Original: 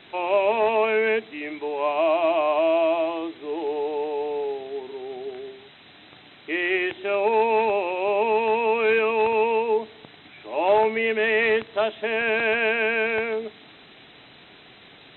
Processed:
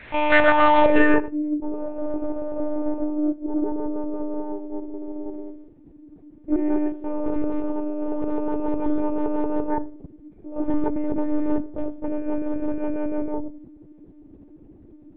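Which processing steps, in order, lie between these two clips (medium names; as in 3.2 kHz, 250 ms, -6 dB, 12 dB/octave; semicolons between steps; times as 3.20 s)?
integer overflow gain 14 dB; low-pass sweep 2 kHz -> 290 Hz, 0.35–1.32 s; Chebyshev shaper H 6 -27 dB, 8 -20 dB, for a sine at -7.5 dBFS; reverberation RT60 0.50 s, pre-delay 44 ms, DRR 14.5 dB; monotone LPC vocoder at 8 kHz 300 Hz; trim +4 dB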